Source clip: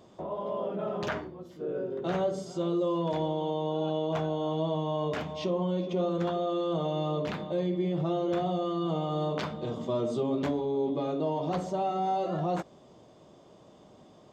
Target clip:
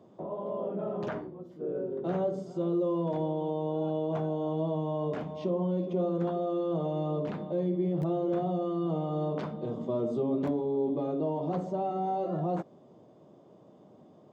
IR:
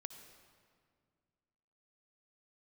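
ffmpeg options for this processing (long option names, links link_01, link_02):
-filter_complex "[0:a]tiltshelf=frequency=1300:gain=8,acrossover=split=100|1800[link_01][link_02][link_03];[link_01]acrusher=bits=3:dc=4:mix=0:aa=0.000001[link_04];[link_04][link_02][link_03]amix=inputs=3:normalize=0,volume=-6.5dB"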